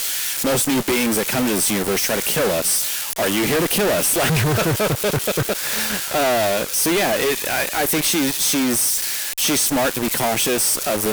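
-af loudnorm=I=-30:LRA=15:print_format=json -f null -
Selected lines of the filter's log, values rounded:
"input_i" : "-18.1",
"input_tp" : "-11.3",
"input_lra" : "0.7",
"input_thresh" : "-28.1",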